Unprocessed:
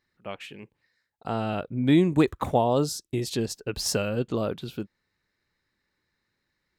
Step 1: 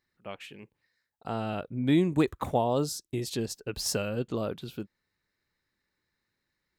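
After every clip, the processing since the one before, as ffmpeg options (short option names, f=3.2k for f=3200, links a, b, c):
-af "highshelf=f=9.8k:g=4.5,volume=-4dB"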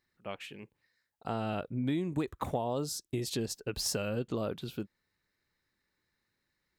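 -af "acompressor=threshold=-29dB:ratio=6"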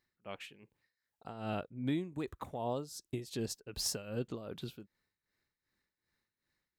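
-af "tremolo=f=2.6:d=0.76,volume=-1.5dB"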